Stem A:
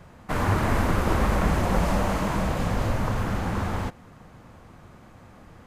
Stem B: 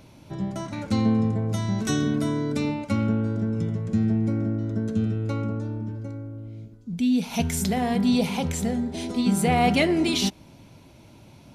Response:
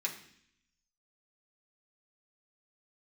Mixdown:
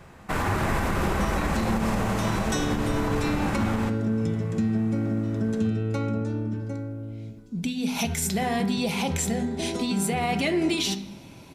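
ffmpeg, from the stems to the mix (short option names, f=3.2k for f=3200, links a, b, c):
-filter_complex "[0:a]volume=-0.5dB,asplit=2[a][b];[b]volume=-5.5dB[c];[1:a]acompressor=threshold=-25dB:ratio=3,bandreject=f=50:t=h:w=6,bandreject=f=100:t=h:w=6,bandreject=f=150:t=h:w=6,bandreject=f=200:t=h:w=6,bandreject=f=250:t=h:w=6,adelay=650,volume=2.5dB,asplit=2[d][e];[e]volume=-6.5dB[f];[2:a]atrim=start_sample=2205[g];[c][f]amix=inputs=2:normalize=0[h];[h][g]afir=irnorm=-1:irlink=0[i];[a][d][i]amix=inputs=3:normalize=0,alimiter=limit=-16dB:level=0:latency=1:release=84"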